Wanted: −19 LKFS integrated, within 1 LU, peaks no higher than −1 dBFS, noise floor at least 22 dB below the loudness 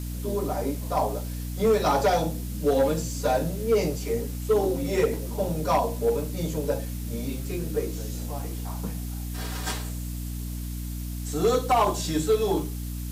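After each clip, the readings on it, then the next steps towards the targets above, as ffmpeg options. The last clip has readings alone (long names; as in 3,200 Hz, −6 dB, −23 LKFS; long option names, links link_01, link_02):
mains hum 60 Hz; hum harmonics up to 300 Hz; level of the hum −30 dBFS; background noise floor −33 dBFS; target noise floor −49 dBFS; integrated loudness −27.0 LKFS; sample peak −13.0 dBFS; target loudness −19.0 LKFS
→ -af "bandreject=frequency=60:width_type=h:width=6,bandreject=frequency=120:width_type=h:width=6,bandreject=frequency=180:width_type=h:width=6,bandreject=frequency=240:width_type=h:width=6,bandreject=frequency=300:width_type=h:width=6"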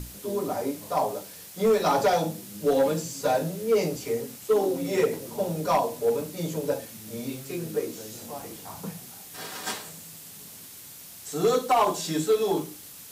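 mains hum none found; background noise floor −45 dBFS; target noise floor −49 dBFS
→ -af "afftdn=noise_reduction=6:noise_floor=-45"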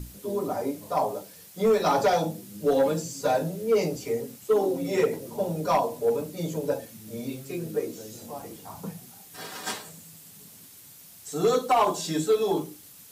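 background noise floor −50 dBFS; integrated loudness −27.0 LKFS; sample peak −14.0 dBFS; target loudness −19.0 LKFS
→ -af "volume=8dB"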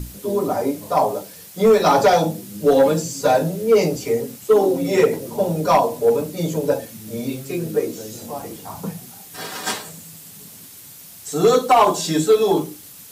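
integrated loudness −19.0 LKFS; sample peak −6.0 dBFS; background noise floor −42 dBFS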